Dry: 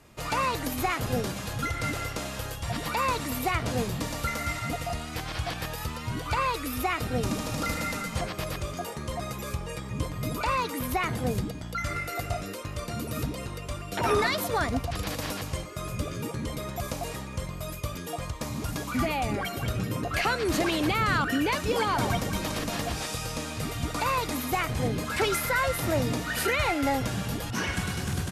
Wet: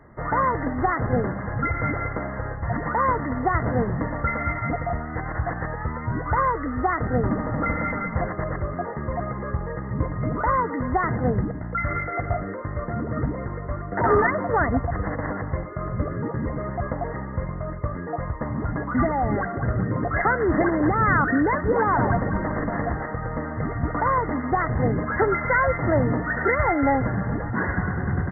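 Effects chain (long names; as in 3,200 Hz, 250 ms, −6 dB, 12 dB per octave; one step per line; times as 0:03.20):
linear-phase brick-wall low-pass 2,100 Hz
level +6 dB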